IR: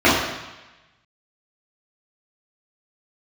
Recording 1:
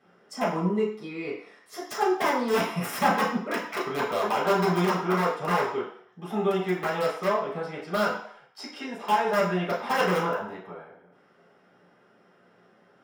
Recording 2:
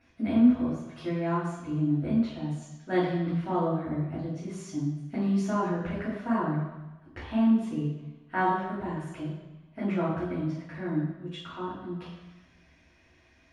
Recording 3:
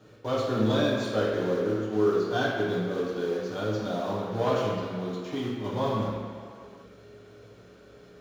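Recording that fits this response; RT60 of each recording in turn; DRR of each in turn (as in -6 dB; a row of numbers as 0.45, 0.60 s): 2; 0.65, 1.1, 2.1 s; -8.0, -10.5, -8.0 dB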